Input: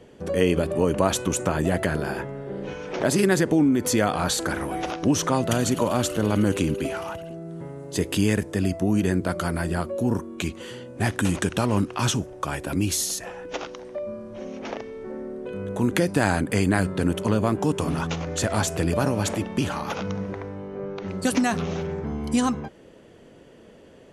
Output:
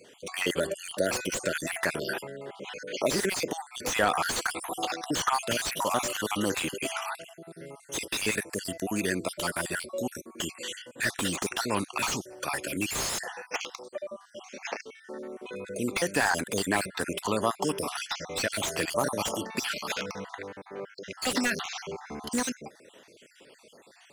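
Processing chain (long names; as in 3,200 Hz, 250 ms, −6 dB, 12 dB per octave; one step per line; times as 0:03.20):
time-frequency cells dropped at random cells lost 48%
high-pass filter 600 Hz 6 dB per octave
high-shelf EQ 2,100 Hz +10.5 dB
slew-rate limiting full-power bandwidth 180 Hz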